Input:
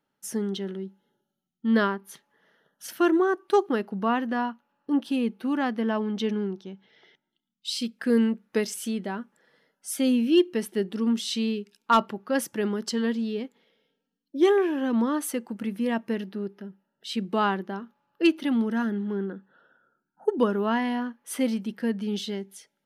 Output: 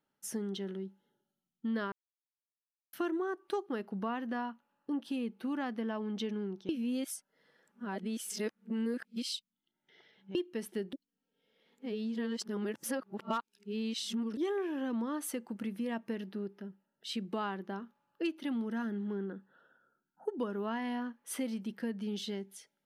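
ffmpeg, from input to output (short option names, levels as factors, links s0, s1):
-filter_complex "[0:a]asplit=7[s0][s1][s2][s3][s4][s5][s6];[s0]atrim=end=1.92,asetpts=PTS-STARTPTS,afade=t=out:st=1.916:d=0.004:c=hsin[s7];[s1]atrim=start=1.92:end=2.93,asetpts=PTS-STARTPTS,volume=0[s8];[s2]atrim=start=2.93:end=6.692,asetpts=PTS-STARTPTS,afade=t=in:d=0.004:c=hsin[s9];[s3]atrim=start=6.688:end=10.352,asetpts=PTS-STARTPTS,areverse[s10];[s4]atrim=start=10.348:end=10.932[s11];[s5]atrim=start=10.928:end=14.372,asetpts=PTS-STARTPTS,areverse[s12];[s6]atrim=start=14.368[s13];[s7][s8][s9]concat=n=3:v=0:a=1[s14];[s14][s10]acrossfade=d=0.004:c1=hsin:c2=hsin[s15];[s15][s11]acrossfade=d=0.004:c1=hsin:c2=hsin[s16];[s16][s12]acrossfade=d=0.004:c1=hsin:c2=hsin[s17];[s17][s13]acrossfade=d=0.004:c1=hsin:c2=hsin,acompressor=threshold=0.0355:ratio=3,volume=0.562"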